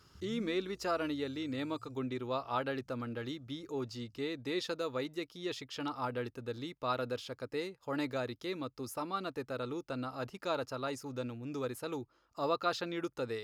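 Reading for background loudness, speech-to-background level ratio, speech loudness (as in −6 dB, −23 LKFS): −56.5 LKFS, 18.5 dB, −38.0 LKFS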